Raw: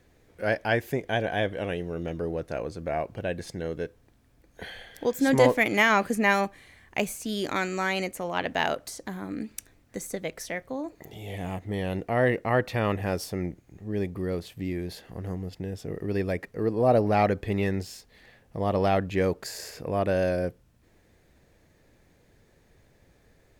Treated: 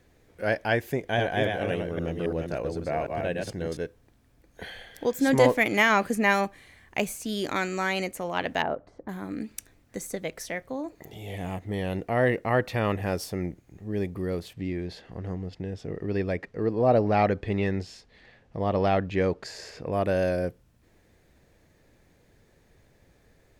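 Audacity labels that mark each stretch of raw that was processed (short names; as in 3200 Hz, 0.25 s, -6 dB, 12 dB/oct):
0.910000	3.770000	reverse delay 0.27 s, level -3 dB
8.620000	9.090000	LPF 1000 Hz
14.530000	19.930000	LPF 5400 Hz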